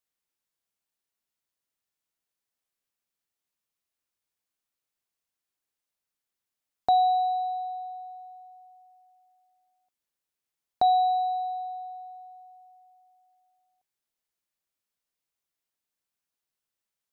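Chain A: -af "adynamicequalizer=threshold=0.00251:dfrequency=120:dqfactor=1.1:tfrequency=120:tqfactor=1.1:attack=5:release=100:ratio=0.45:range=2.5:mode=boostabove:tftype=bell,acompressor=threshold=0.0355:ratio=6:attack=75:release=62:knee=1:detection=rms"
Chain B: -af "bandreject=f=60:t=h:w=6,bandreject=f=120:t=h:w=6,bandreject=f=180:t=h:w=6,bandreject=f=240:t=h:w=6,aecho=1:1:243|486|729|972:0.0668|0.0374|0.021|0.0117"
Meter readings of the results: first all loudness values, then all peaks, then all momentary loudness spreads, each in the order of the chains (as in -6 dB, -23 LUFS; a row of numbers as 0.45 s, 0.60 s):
-31.5 LUFS, -26.5 LUFS; -14.5 dBFS, -14.5 dBFS; 19 LU, 21 LU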